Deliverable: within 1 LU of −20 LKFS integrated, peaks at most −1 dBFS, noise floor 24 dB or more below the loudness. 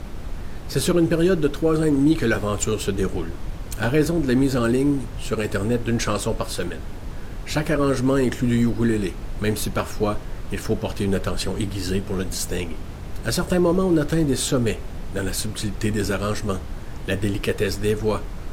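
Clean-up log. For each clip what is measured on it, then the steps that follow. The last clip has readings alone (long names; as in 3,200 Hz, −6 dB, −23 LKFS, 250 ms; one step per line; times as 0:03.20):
background noise floor −33 dBFS; target noise floor −47 dBFS; integrated loudness −23.0 LKFS; sample peak −7.5 dBFS; target loudness −20.0 LKFS
→ noise reduction from a noise print 14 dB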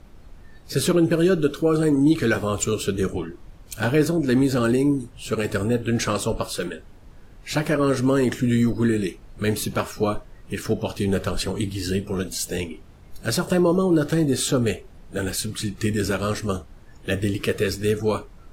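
background noise floor −47 dBFS; integrated loudness −23.0 LKFS; sample peak −7.5 dBFS; target loudness −20.0 LKFS
→ level +3 dB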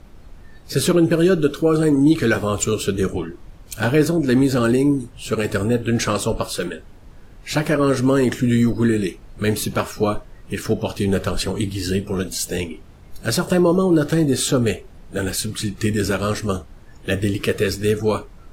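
integrated loudness −20.0 LKFS; sample peak −4.5 dBFS; background noise floor −44 dBFS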